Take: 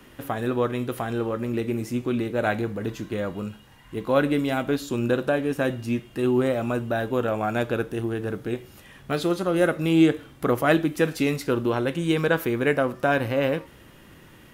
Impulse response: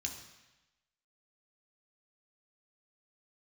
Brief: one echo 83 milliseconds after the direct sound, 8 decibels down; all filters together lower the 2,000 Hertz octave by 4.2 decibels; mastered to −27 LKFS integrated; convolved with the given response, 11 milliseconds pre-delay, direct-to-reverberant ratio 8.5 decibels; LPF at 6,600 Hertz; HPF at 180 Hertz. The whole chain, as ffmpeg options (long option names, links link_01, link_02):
-filter_complex "[0:a]highpass=180,lowpass=6600,equalizer=frequency=2000:width_type=o:gain=-6,aecho=1:1:83:0.398,asplit=2[link_01][link_02];[1:a]atrim=start_sample=2205,adelay=11[link_03];[link_02][link_03]afir=irnorm=-1:irlink=0,volume=-8dB[link_04];[link_01][link_04]amix=inputs=2:normalize=0,volume=-2.5dB"